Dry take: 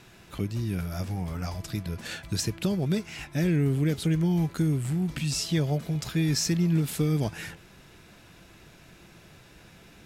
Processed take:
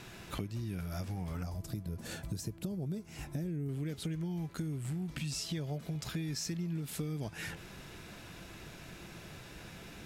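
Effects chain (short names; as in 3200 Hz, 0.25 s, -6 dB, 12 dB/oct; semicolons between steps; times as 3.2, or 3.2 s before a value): 1.43–3.69 bell 2500 Hz -12.5 dB 2.8 oct; compressor 6:1, threshold -39 dBFS, peak gain reduction 17 dB; gain +3 dB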